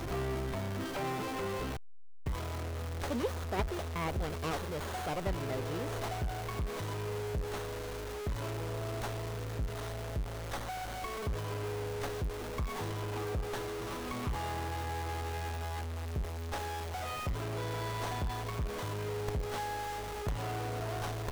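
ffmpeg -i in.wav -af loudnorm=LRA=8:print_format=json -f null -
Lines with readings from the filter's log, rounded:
"input_i" : "-37.4",
"input_tp" : "-18.5",
"input_lra" : "1.8",
"input_thresh" : "-47.4",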